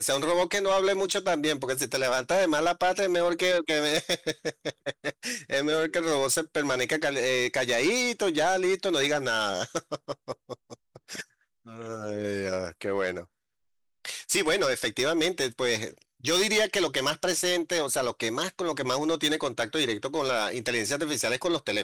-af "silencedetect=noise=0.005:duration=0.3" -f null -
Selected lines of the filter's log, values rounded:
silence_start: 11.23
silence_end: 11.66 | silence_duration: 0.43
silence_start: 13.25
silence_end: 14.05 | silence_duration: 0.80